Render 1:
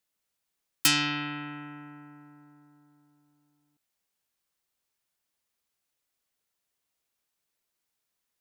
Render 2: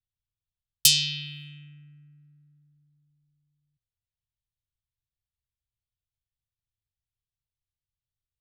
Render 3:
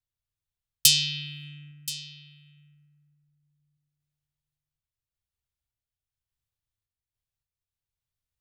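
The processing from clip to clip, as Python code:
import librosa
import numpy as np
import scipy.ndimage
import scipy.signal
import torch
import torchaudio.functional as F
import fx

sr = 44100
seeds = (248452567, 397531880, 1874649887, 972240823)

y1 = scipy.signal.sosfilt(scipy.signal.ellip(3, 1.0, 60, [120.0, 3400.0], 'bandstop', fs=sr, output='sos'), x)
y1 = fx.env_lowpass(y1, sr, base_hz=1100.0, full_db=-42.5)
y1 = fx.low_shelf(y1, sr, hz=110.0, db=5.0)
y1 = y1 * 10.0 ** (7.5 / 20.0)
y2 = fx.tremolo_random(y1, sr, seeds[0], hz=3.5, depth_pct=55)
y2 = y2 + 10.0 ** (-16.0 / 20.0) * np.pad(y2, (int(1027 * sr / 1000.0), 0))[:len(y2)]
y2 = y2 * 10.0 ** (3.0 / 20.0)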